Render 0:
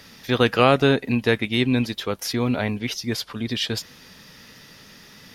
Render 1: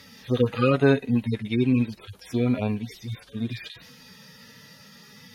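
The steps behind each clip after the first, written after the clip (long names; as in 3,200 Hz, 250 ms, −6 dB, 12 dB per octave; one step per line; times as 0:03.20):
harmonic-percussive split with one part muted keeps harmonic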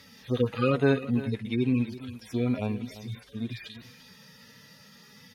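single-tap delay 341 ms −15.5 dB
level −4 dB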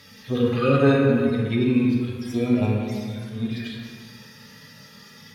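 dense smooth reverb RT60 1.8 s, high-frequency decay 0.55×, DRR −2 dB
level +2.5 dB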